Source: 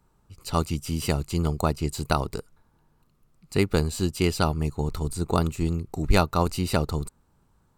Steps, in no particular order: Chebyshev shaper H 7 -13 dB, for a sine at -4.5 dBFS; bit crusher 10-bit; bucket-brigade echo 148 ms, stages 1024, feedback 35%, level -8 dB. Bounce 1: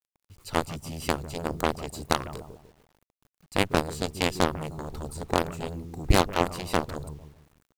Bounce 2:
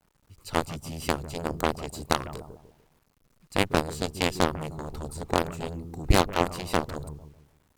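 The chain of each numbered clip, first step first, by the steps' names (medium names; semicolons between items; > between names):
bucket-brigade echo > Chebyshev shaper > bit crusher; bucket-brigade echo > bit crusher > Chebyshev shaper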